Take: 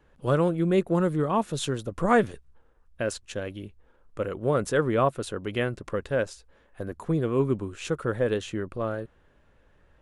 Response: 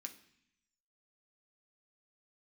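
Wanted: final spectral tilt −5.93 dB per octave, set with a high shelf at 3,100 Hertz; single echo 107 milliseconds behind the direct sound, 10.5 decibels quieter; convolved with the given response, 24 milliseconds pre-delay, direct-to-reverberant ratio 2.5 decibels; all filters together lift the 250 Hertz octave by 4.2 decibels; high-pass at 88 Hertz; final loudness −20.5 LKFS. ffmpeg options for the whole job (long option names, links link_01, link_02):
-filter_complex "[0:a]highpass=88,equalizer=frequency=250:width_type=o:gain=6,highshelf=frequency=3100:gain=5,aecho=1:1:107:0.299,asplit=2[link_01][link_02];[1:a]atrim=start_sample=2205,adelay=24[link_03];[link_02][link_03]afir=irnorm=-1:irlink=0,volume=2.5dB[link_04];[link_01][link_04]amix=inputs=2:normalize=0,volume=2.5dB"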